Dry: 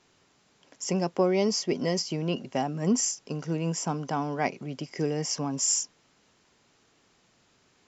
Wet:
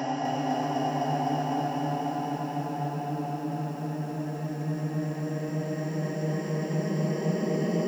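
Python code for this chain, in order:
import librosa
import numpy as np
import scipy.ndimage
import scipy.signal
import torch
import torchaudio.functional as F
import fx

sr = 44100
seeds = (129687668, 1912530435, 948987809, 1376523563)

y = fx.high_shelf(x, sr, hz=3700.0, db=4.0)
y = fx.paulstretch(y, sr, seeds[0], factor=38.0, window_s=0.25, from_s=2.64)
y = fx.echo_crushed(y, sr, ms=253, feedback_pct=80, bits=9, wet_db=-4.5)
y = y * 10.0 ** (-1.5 / 20.0)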